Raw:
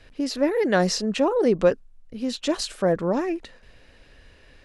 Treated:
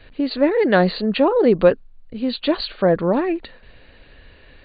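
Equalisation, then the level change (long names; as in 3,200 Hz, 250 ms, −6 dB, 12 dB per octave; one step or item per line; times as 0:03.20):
linear-phase brick-wall low-pass 4,700 Hz
+5.0 dB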